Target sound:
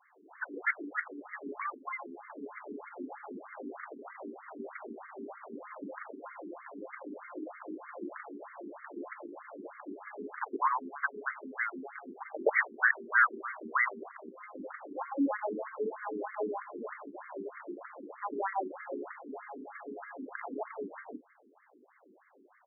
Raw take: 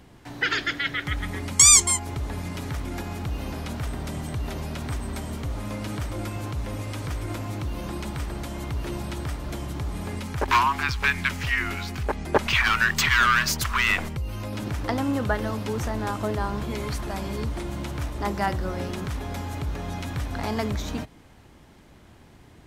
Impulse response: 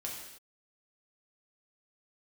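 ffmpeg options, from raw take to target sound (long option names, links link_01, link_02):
-filter_complex "[0:a]highpass=200,bandreject=frequency=50:width_type=h:width=6,bandreject=frequency=100:width_type=h:width=6,bandreject=frequency=150:width_type=h:width=6,bandreject=frequency=200:width_type=h:width=6,bandreject=frequency=250:width_type=h:width=6,bandreject=frequency=300:width_type=h:width=6,bandreject=frequency=350:width_type=h:width=6,acrossover=split=880[link_01][link_02];[link_01]adelay=120[link_03];[link_03][link_02]amix=inputs=2:normalize=0,aresample=11025,aeval=exprs='clip(val(0),-1,0.126)':channel_layout=same,aresample=44100,afftfilt=real='re*between(b*sr/1024,300*pow(1600/300,0.5+0.5*sin(2*PI*3.2*pts/sr))/1.41,300*pow(1600/300,0.5+0.5*sin(2*PI*3.2*pts/sr))*1.41)':imag='im*between(b*sr/1024,300*pow(1600/300,0.5+0.5*sin(2*PI*3.2*pts/sr))/1.41,300*pow(1600/300,0.5+0.5*sin(2*PI*3.2*pts/sr))*1.41)':win_size=1024:overlap=0.75"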